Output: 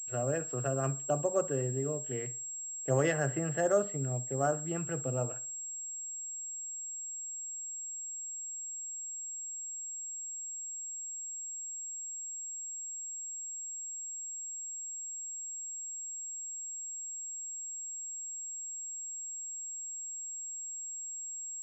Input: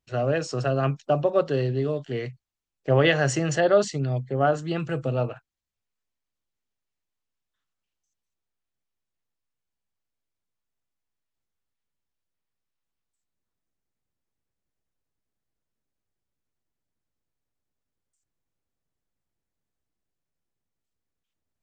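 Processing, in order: treble ducked by the level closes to 2100 Hz, closed at -22 dBFS; dark delay 65 ms, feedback 33%, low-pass 2900 Hz, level -17.5 dB; pulse-width modulation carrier 7600 Hz; gain -8.5 dB

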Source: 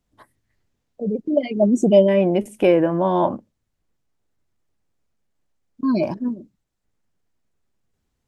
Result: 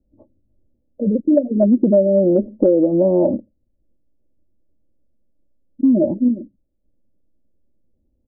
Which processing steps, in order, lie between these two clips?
steep low-pass 600 Hz 36 dB/oct; comb 3.5 ms, depth 57%; compressor, threshold -17 dBFS, peak gain reduction 9.5 dB; gain +6.5 dB

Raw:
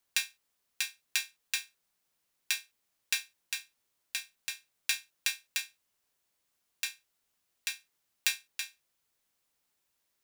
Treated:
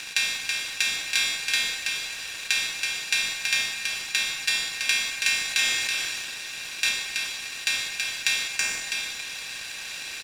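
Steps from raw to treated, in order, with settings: per-bin compression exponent 0.2; in parallel at -3.5 dB: bit-crush 5-bit; on the sum: air absorption 52 m; echo 0.327 s -4.5 dB; on a send at -6 dB: reverb RT60 2.3 s, pre-delay 30 ms; 5.43–6.89 on the sum: sustainer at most 25 dB/s

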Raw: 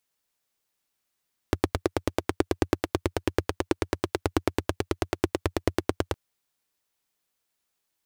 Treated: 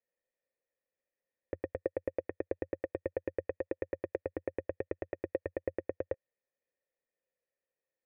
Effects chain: high shelf 2700 Hz -11.5 dB; limiter -14.5 dBFS, peak gain reduction 7.5 dB; vocal tract filter e; gain +7.5 dB

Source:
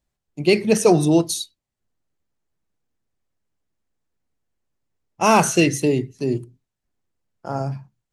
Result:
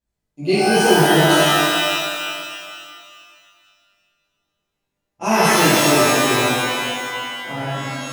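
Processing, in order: shimmer reverb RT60 2.1 s, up +12 st, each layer -2 dB, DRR -11.5 dB; gain -11 dB

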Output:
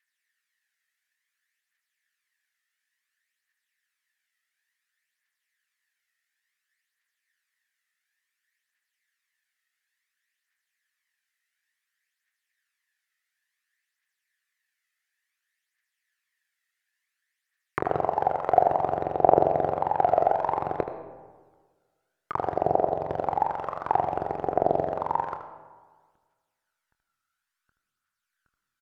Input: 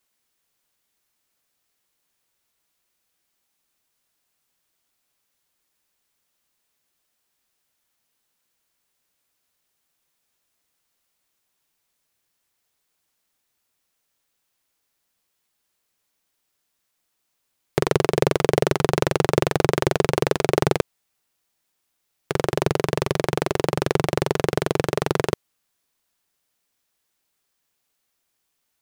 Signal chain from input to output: tilt -3 dB/oct; notches 60/120/180 Hz; in parallel at -4 dB: companded quantiser 4-bit; on the sum: backlash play -9 dBFS; tremolo saw down 1.3 Hz, depth 50%; added noise violet -57 dBFS; phaser 0.57 Hz, delay 1.6 ms, feedback 50%; auto-wah 730–1800 Hz, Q 7.7, down, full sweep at -9 dBFS; early reflections 25 ms -13 dB, 77 ms -10.5 dB; on a send at -10 dB: reverb RT60 1.5 s, pre-delay 55 ms; on the sum: gain +6 dB

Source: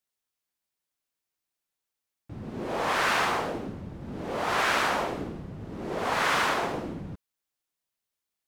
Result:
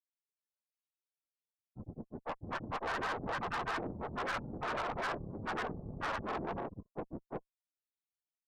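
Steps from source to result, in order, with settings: loudest bins only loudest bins 32; grains 0.1 s, grains 20/s, spray 0.682 s; tube stage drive 32 dB, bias 0.7

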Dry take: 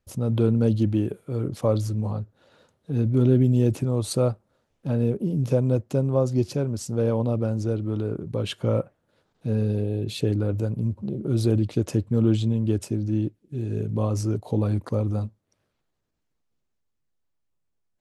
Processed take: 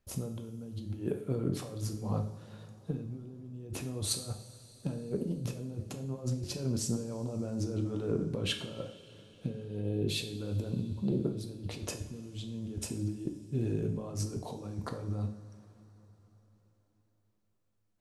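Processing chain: negative-ratio compressor -28 dBFS, ratio -0.5; two-slope reverb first 0.53 s, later 4.4 s, from -18 dB, DRR 4 dB; gain -6.5 dB

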